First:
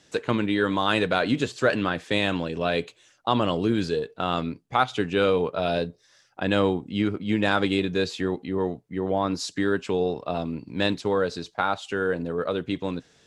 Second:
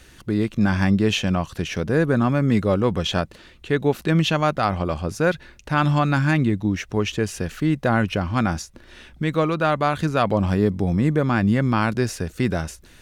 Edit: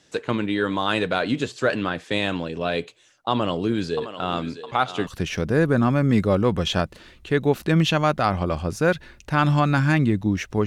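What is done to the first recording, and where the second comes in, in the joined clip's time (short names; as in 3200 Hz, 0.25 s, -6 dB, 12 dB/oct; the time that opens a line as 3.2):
first
3.31–5.07 thinning echo 0.661 s, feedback 58%, high-pass 510 Hz, level -9 dB
5.07 switch to second from 1.46 s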